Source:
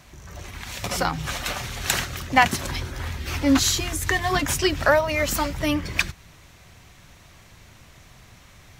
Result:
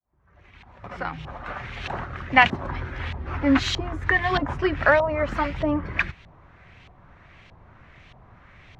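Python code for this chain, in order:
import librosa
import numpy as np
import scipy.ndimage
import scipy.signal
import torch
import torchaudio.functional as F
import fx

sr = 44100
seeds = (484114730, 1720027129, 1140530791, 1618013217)

y = fx.fade_in_head(x, sr, length_s=2.35)
y = fx.filter_lfo_lowpass(y, sr, shape='saw_up', hz=1.6, low_hz=780.0, high_hz=3200.0, q=1.7)
y = F.gain(torch.from_numpy(y), -1.0).numpy()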